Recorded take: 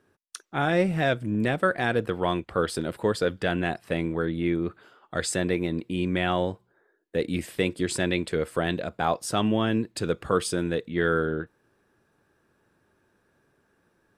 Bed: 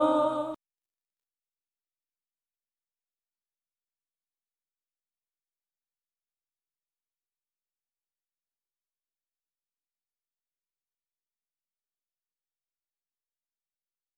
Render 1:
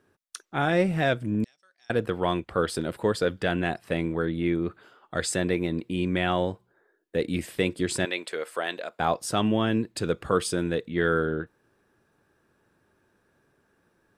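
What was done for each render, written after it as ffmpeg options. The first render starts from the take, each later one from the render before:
ffmpeg -i in.wav -filter_complex "[0:a]asettb=1/sr,asplit=3[link_01][link_02][link_03];[link_01]atrim=end=1.444[link_04];[link_02]atrim=start=1.44:end=1.9,asetpts=PTS-STARTPTS,afade=type=in:duration=0.004:curve=qsin,afade=type=out:start_time=0.456:duration=0.004:curve=qsin,bandpass=frequency=5500:width_type=q:width=18[link_05];[link_03]atrim=start=1.896[link_06];[link_04][link_05]acrossfade=duration=0.004:curve1=hsin:curve2=qsin[link_07];[link_07][link_06]acrossfade=duration=0.004:curve1=qsin:curve2=hsin,asettb=1/sr,asplit=3[link_08][link_09][link_10];[link_08]atrim=end=8.054[link_11];[link_09]atrim=start=8.05:end=9,asetpts=PTS-STARTPTS,afade=type=in:duration=0.004:curve=qsin,afade=type=out:start_time=0.946:duration=0.004:curve=qsin,highpass=560[link_12];[link_10]atrim=start=8.996[link_13];[link_11][link_12]acrossfade=duration=0.004:curve1=hsin:curve2=qsin[link_14];[link_14][link_13]acrossfade=duration=0.004:curve1=qsin:curve2=hsin" out.wav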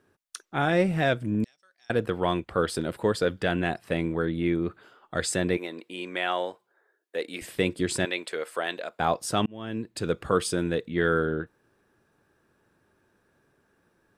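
ffmpeg -i in.wav -filter_complex "[0:a]asettb=1/sr,asplit=3[link_01][link_02][link_03];[link_01]atrim=end=5.574[link_04];[link_02]atrim=start=5.57:end=7.42,asetpts=PTS-STARTPTS,afade=type=in:duration=0.004:curve=qsin,afade=type=out:start_time=1.846:duration=0.004:curve=qsin,highpass=520[link_05];[link_03]atrim=start=7.416[link_06];[link_04][link_05]acrossfade=duration=0.004:curve1=hsin:curve2=qsin[link_07];[link_07][link_06]acrossfade=duration=0.004:curve1=qsin:curve2=hsin,asplit=2[link_08][link_09];[link_08]atrim=end=9.46,asetpts=PTS-STARTPTS,afade=type=out:start_time=9.456:duration=0.004:curve=hsin[link_10];[link_09]atrim=start=9.46,asetpts=PTS-STARTPTS,afade=type=in:duration=0.68[link_11];[link_10][link_11]concat=n=2:v=0:a=1" out.wav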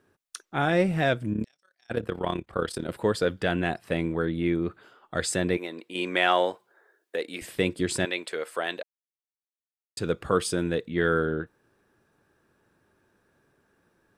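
ffmpeg -i in.wav -filter_complex "[0:a]asettb=1/sr,asplit=3[link_01][link_02][link_03];[link_01]atrim=end=1.334[link_04];[link_02]atrim=start=1.33:end=2.89,asetpts=PTS-STARTPTS,afade=type=in:duration=0.004:curve=qsin,afade=type=out:start_time=1.556:duration=0.004:curve=qsin,tremolo=f=34:d=0.788[link_05];[link_03]atrim=start=2.886[link_06];[link_04][link_05]acrossfade=duration=0.004:curve1=hsin:curve2=qsin[link_07];[link_07][link_06]acrossfade=duration=0.004:curve1=qsin:curve2=hsin,asettb=1/sr,asplit=3[link_08][link_09][link_10];[link_08]atrim=end=5.954[link_11];[link_09]atrim=start=5.95:end=7.16,asetpts=PTS-STARTPTS,afade=type=in:duration=0.004:curve=qsin,afade=type=out:start_time=1.206:duration=0.004:curve=qsin,acontrast=53[link_12];[link_10]atrim=start=7.156[link_13];[link_11][link_12]acrossfade=duration=0.004:curve1=hsin:curve2=qsin[link_14];[link_14][link_13]acrossfade=duration=0.004:curve1=qsin:curve2=hsin,asplit=3[link_15][link_16][link_17];[link_15]atrim=end=8.83,asetpts=PTS-STARTPTS,afade=type=out:start_time=8.826:duration=0.004:curve=hsin[link_18];[link_16]atrim=start=8.83:end=9.97,asetpts=PTS-STARTPTS,volume=0[link_19];[link_17]atrim=start=9.97,asetpts=PTS-STARTPTS,afade=type=in:duration=0.004:curve=hsin[link_20];[link_18][link_19][link_20]concat=n=3:v=0:a=1" out.wav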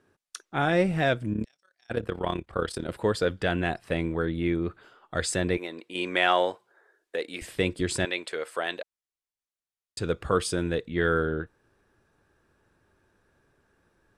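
ffmpeg -i in.wav -af "asubboost=boost=2.5:cutoff=94,lowpass=11000" out.wav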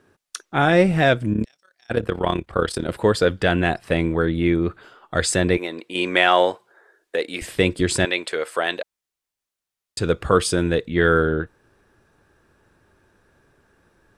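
ffmpeg -i in.wav -af "volume=7.5dB,alimiter=limit=-3dB:level=0:latency=1" out.wav

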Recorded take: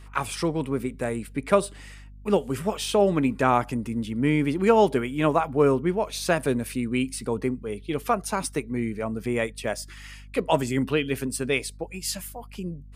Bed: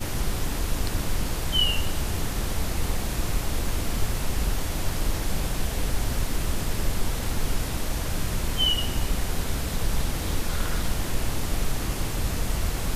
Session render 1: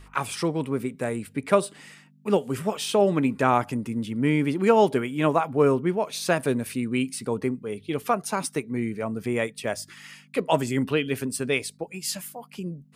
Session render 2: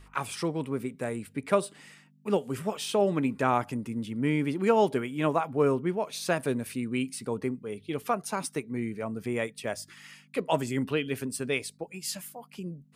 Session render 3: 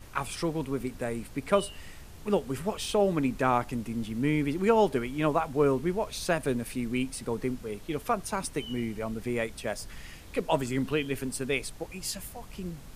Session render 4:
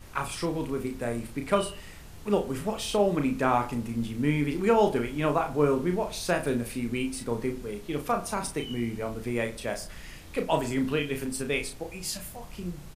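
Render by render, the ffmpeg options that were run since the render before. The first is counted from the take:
ffmpeg -i in.wav -af "bandreject=frequency=50:width_type=h:width=4,bandreject=frequency=100:width_type=h:width=4" out.wav
ffmpeg -i in.wav -af "volume=-4.5dB" out.wav
ffmpeg -i in.wav -i bed.wav -filter_complex "[1:a]volume=-20.5dB[link_01];[0:a][link_01]amix=inputs=2:normalize=0" out.wav
ffmpeg -i in.wav -filter_complex "[0:a]asplit=2[link_01][link_02];[link_02]adelay=34,volume=-5.5dB[link_03];[link_01][link_03]amix=inputs=2:normalize=0,asplit=2[link_04][link_05];[link_05]adelay=61,lowpass=frequency=2000:poles=1,volume=-13dB,asplit=2[link_06][link_07];[link_07]adelay=61,lowpass=frequency=2000:poles=1,volume=0.46,asplit=2[link_08][link_09];[link_09]adelay=61,lowpass=frequency=2000:poles=1,volume=0.46,asplit=2[link_10][link_11];[link_11]adelay=61,lowpass=frequency=2000:poles=1,volume=0.46,asplit=2[link_12][link_13];[link_13]adelay=61,lowpass=frequency=2000:poles=1,volume=0.46[link_14];[link_04][link_06][link_08][link_10][link_12][link_14]amix=inputs=6:normalize=0" out.wav

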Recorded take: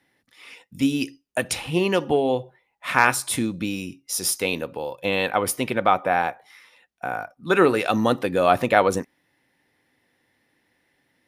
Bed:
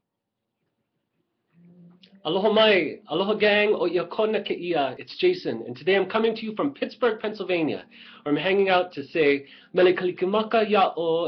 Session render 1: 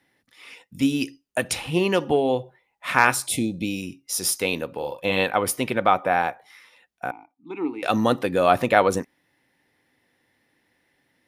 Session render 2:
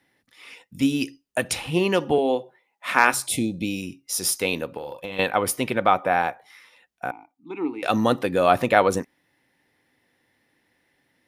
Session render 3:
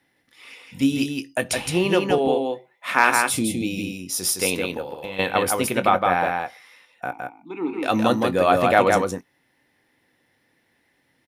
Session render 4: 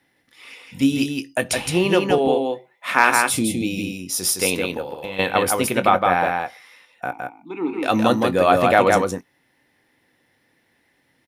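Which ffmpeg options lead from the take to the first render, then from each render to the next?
ffmpeg -i in.wav -filter_complex "[0:a]asplit=3[link_01][link_02][link_03];[link_01]afade=type=out:start_time=3.26:duration=0.02[link_04];[link_02]asuperstop=centerf=1300:order=12:qfactor=1,afade=type=in:start_time=3.26:duration=0.02,afade=type=out:start_time=3.81:duration=0.02[link_05];[link_03]afade=type=in:start_time=3.81:duration=0.02[link_06];[link_04][link_05][link_06]amix=inputs=3:normalize=0,asettb=1/sr,asplit=3[link_07][link_08][link_09];[link_07]atrim=end=4.724[link_10];[link_08]atrim=start=4.72:end=5.24,asetpts=PTS-STARTPTS,afade=type=in:duration=0.004:curve=qsin,afade=type=out:start_time=0.516:duration=0.004:curve=qsin,asplit=2[link_11][link_12];[link_12]adelay=42,volume=-7.5dB[link_13];[link_11][link_13]amix=inputs=2:normalize=0,atrim=end_sample=22932[link_14];[link_09]atrim=start=5.236[link_15];[link_10][link_14]acrossfade=duration=0.004:curve1=hsin:curve2=qsin[link_16];[link_16][link_15]acrossfade=duration=0.004:curve1=qsin:curve2=hsin,asettb=1/sr,asplit=3[link_17][link_18][link_19];[link_17]atrim=end=7.114[link_20];[link_18]atrim=start=7.11:end=7.83,asetpts=PTS-STARTPTS,afade=type=in:duration=0.004:curve=qsin,afade=type=out:start_time=0.716:duration=0.004:curve=qsin,asplit=3[link_21][link_22][link_23];[link_21]bandpass=frequency=300:width_type=q:width=8,volume=0dB[link_24];[link_22]bandpass=frequency=870:width_type=q:width=8,volume=-6dB[link_25];[link_23]bandpass=frequency=2240:width_type=q:width=8,volume=-9dB[link_26];[link_24][link_25][link_26]amix=inputs=3:normalize=0[link_27];[link_19]atrim=start=7.826[link_28];[link_20][link_27]acrossfade=duration=0.004:curve1=hsin:curve2=qsin[link_29];[link_29][link_28]acrossfade=duration=0.004:curve1=qsin:curve2=hsin" out.wav
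ffmpeg -i in.wav -filter_complex "[0:a]asettb=1/sr,asplit=3[link_01][link_02][link_03];[link_01]atrim=end=2.184[link_04];[link_02]atrim=start=2.18:end=3.14,asetpts=PTS-STARTPTS,afade=type=in:duration=0.004:curve=qsin,afade=type=out:start_time=0.956:duration=0.004:curve=qsin,highpass=frequency=190:width=0.5412,highpass=frequency=190:width=1.3066[link_05];[link_03]atrim=start=3.136[link_06];[link_04][link_05]acrossfade=duration=0.004:curve1=hsin:curve2=qsin[link_07];[link_07][link_06]acrossfade=duration=0.004:curve1=qsin:curve2=hsin,asettb=1/sr,asplit=3[link_08][link_09][link_10];[link_08]atrim=end=4.774[link_11];[link_09]atrim=start=4.77:end=5.19,asetpts=PTS-STARTPTS,afade=type=in:duration=0.004:curve=qsin,afade=type=out:start_time=0.416:duration=0.004:curve=qsin,acompressor=threshold=-29dB:ratio=6:attack=3.2:release=140:knee=1:detection=peak[link_12];[link_10]atrim=start=5.186[link_13];[link_11][link_12]acrossfade=duration=0.004:curve1=hsin:curve2=qsin[link_14];[link_14][link_13]acrossfade=duration=0.004:curve1=qsin:curve2=hsin" out.wav
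ffmpeg -i in.wav -filter_complex "[0:a]asplit=2[link_01][link_02];[link_02]adelay=22,volume=-13dB[link_03];[link_01][link_03]amix=inputs=2:normalize=0,aecho=1:1:164:0.668" out.wav
ffmpeg -i in.wav -af "volume=2dB,alimiter=limit=-1dB:level=0:latency=1" out.wav

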